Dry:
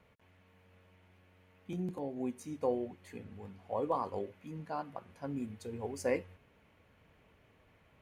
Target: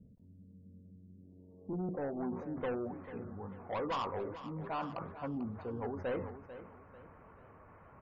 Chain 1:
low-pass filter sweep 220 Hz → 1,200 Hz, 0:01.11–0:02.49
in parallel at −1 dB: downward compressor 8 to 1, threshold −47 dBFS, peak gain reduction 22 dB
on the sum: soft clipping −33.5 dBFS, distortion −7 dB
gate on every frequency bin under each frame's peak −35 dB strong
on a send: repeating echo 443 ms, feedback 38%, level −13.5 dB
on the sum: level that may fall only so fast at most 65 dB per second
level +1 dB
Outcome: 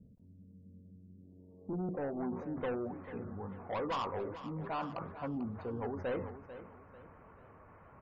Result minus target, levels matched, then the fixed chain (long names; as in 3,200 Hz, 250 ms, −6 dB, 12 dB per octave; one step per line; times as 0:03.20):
downward compressor: peak gain reduction −8.5 dB
low-pass filter sweep 220 Hz → 1,200 Hz, 0:01.11–0:02.49
in parallel at −1 dB: downward compressor 8 to 1, threshold −56.5 dBFS, peak gain reduction 30.5 dB
on the sum: soft clipping −33.5 dBFS, distortion −7 dB
gate on every frequency bin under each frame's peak −35 dB strong
on a send: repeating echo 443 ms, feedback 38%, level −13.5 dB
on the sum: level that may fall only so fast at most 65 dB per second
level +1 dB